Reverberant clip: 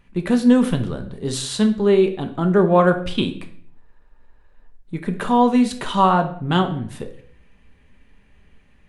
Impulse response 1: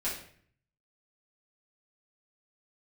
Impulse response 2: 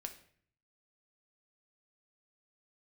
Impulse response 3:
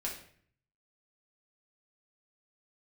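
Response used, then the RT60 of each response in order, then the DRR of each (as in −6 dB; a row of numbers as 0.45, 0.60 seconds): 2; 0.55, 0.55, 0.55 seconds; −9.5, 5.0, −3.5 decibels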